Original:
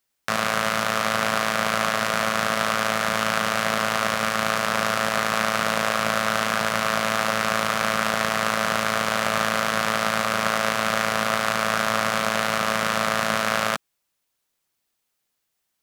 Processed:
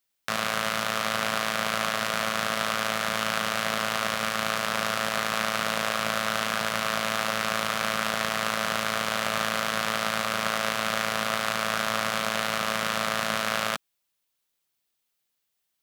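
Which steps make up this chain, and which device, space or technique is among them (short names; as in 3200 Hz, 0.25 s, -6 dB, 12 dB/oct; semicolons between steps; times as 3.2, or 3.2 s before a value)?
presence and air boost (bell 3400 Hz +4 dB 1.1 oct; high shelf 11000 Hz +6 dB); gain -5.5 dB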